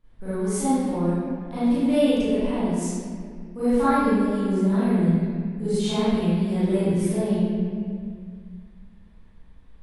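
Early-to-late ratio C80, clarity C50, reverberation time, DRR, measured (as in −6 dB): −3.5 dB, −7.5 dB, 2.0 s, −15.5 dB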